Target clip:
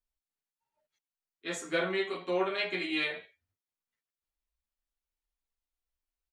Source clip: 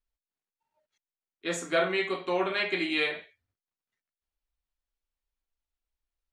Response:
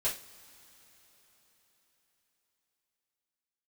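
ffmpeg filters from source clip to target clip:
-filter_complex "[0:a]aeval=exprs='0.224*(cos(1*acos(clip(val(0)/0.224,-1,1)))-cos(1*PI/2))+0.00562*(cos(3*acos(clip(val(0)/0.224,-1,1)))-cos(3*PI/2))':c=same,asplit=2[a][b];[b]adelay=9.6,afreqshift=2.3[c];[a][c]amix=inputs=2:normalize=1"

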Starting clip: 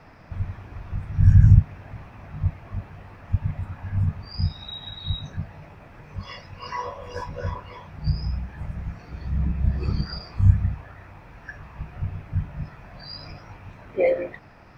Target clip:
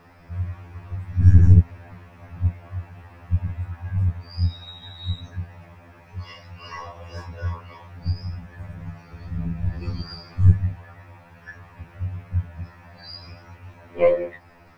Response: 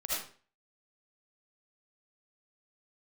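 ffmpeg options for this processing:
-af "aeval=exprs='0.891*(cos(1*acos(clip(val(0)/0.891,-1,1)))-cos(1*PI/2))+0.0631*(cos(3*acos(clip(val(0)/0.891,-1,1)))-cos(3*PI/2))+0.0891*(cos(4*acos(clip(val(0)/0.891,-1,1)))-cos(4*PI/2))+0.00708*(cos(7*acos(clip(val(0)/0.891,-1,1)))-cos(7*PI/2))':c=same,acrusher=bits=11:mix=0:aa=0.000001,afftfilt=real='re*2*eq(mod(b,4),0)':imag='im*2*eq(mod(b,4),0)':win_size=2048:overlap=0.75,volume=3.5dB"

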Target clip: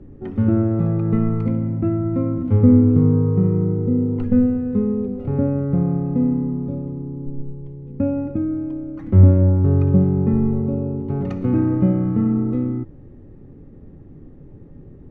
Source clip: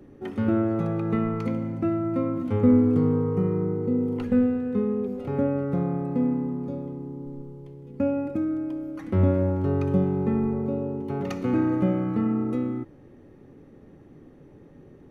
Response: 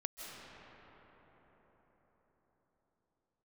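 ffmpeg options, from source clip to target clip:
-af "aemphasis=mode=reproduction:type=riaa,volume=-1.5dB"

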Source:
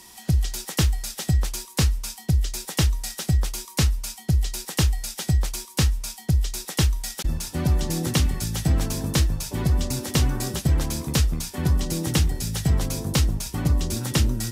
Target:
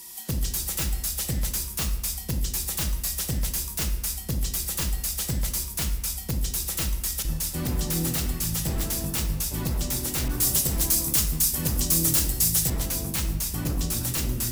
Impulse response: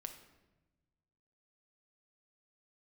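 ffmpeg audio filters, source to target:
-filter_complex "[0:a]aemphasis=mode=production:type=50fm,aeval=exprs='0.141*(abs(mod(val(0)/0.141+3,4)-2)-1)':c=same[a];[1:a]atrim=start_sample=2205[b];[a][b]afir=irnorm=-1:irlink=0,asettb=1/sr,asplit=3[c][d][e];[c]atrim=end=10.284[f];[d]atrim=start=10.28:end=12.7,asetpts=PTS-STARTPTS,afade=t=in:d=0.004:c=qsin,afade=t=out:st=2.416:d=0.004:c=qsin,adynamicequalizer=threshold=0.00501:dfrequency=4300:dqfactor=0.7:tfrequency=4300:tqfactor=0.7:attack=5:release=100:ratio=0.375:range=4:mode=boostabove:tftype=highshelf[g];[e]atrim=start=12.696[h];[f][g]acrossfade=d=0.004:c1=hsin:c2=qsin[i];[i][h]acrossfade=d=0.004:c1=qsin:c2=hsin"

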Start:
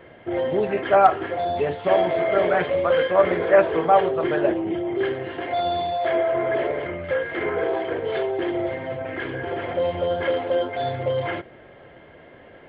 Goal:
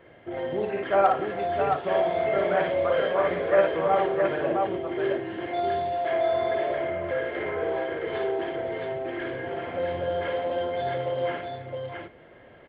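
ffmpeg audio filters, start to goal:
-af "aecho=1:1:56|173|666:0.668|0.112|0.668,volume=-7dB"

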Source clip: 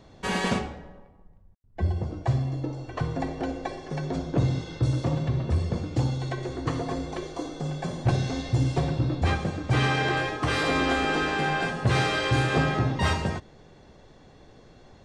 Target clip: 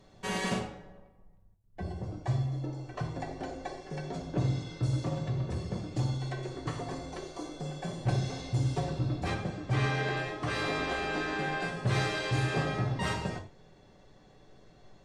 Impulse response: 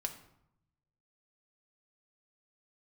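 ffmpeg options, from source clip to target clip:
-filter_complex "[0:a]asetnsamples=n=441:p=0,asendcmd='9.34 highshelf g -3;11.6 highshelf g 4',highshelf=f=7.6k:g=8.5[a];[1:a]atrim=start_sample=2205,atrim=end_sample=3528,asetrate=31752,aresample=44100[b];[a][b]afir=irnorm=-1:irlink=0,volume=-8dB"

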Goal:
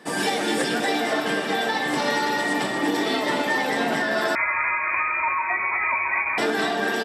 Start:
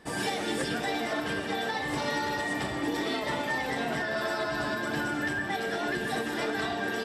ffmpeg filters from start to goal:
-filter_complex "[0:a]highpass=f=170:w=0.5412,highpass=f=170:w=1.3066,aecho=1:1:248|496|744|992|1240|1488:0.316|0.171|0.0922|0.0498|0.0269|0.0145,asettb=1/sr,asplit=3[a][b][c];[a]atrim=end=4.354[d];[b]atrim=start=4.35:end=6.38,asetpts=PTS-STARTPTS,afade=t=in:d=0.004:c=qsin,afade=t=out:st=2.026:d=0.004:c=qsin,lowpass=f=2.3k:t=q:w=0.5098,lowpass=f=2.3k:t=q:w=0.6013,lowpass=f=2.3k:t=q:w=0.9,lowpass=f=2.3k:t=q:w=2.563,afreqshift=-2700[e];[c]atrim=start=6.376[f];[d][e]acrossfade=d=0.004:c1=hsin:c2=qsin[g];[g][f]acrossfade=d=0.004:c1=qsin:c2=hsin,volume=7dB"

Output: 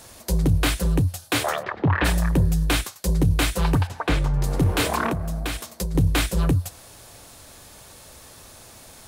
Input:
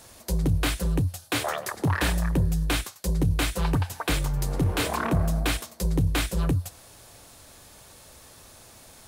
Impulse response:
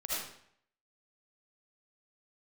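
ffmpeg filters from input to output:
-filter_complex "[0:a]asplit=3[a][b][c];[a]afade=t=out:st=1.62:d=0.02[d];[b]lowpass=f=3.1k:w=0.5412,lowpass=f=3.1k:w=1.3066,afade=t=in:st=1.62:d=0.02,afade=t=out:st=2.04:d=0.02[e];[c]afade=t=in:st=2.04:d=0.02[f];[d][e][f]amix=inputs=3:normalize=0,asettb=1/sr,asplit=3[g][h][i];[g]atrim=end=3.874[j];[h]atrim=start=3.87:end=4.44,asetpts=PTS-STARTPTS,afade=t=in:d=0.004:c=qsin,afade=t=out:st=0.566:d=0.004:c=qsin,aemphasis=mode=reproduction:type=75fm[k];[i]atrim=start=4.436[l];[j][k]acrossfade=d=0.004:c1=hsin:c2=qsin[m];[m][l]acrossfade=d=0.004:c1=qsin:c2=hsin,asettb=1/sr,asplit=3[n][o][p];[n]atrim=end=5.094[q];[o]atrim=start=5.09:end=5.95,asetpts=PTS-STARTPTS,afade=t=in:d=0.004:c=qsin,afade=t=out:st=0.856:d=0.004:c=qsin,acompressor=threshold=-27dB:ratio=12[r];[p]atrim=start=5.946[s];[q][r]acrossfade=d=0.004:c1=hsin:c2=qsin[t];[t][s]acrossfade=d=0.004:c1=qsin:c2=hsin,volume=4dB"

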